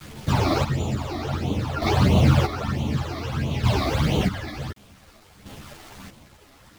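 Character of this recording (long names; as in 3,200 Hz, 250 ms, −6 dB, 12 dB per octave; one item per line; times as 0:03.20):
phaser sweep stages 12, 1.5 Hz, lowest notch 150–1,700 Hz
a quantiser's noise floor 8 bits, dither none
chopped level 0.55 Hz, depth 65%, duty 35%
a shimmering, thickened sound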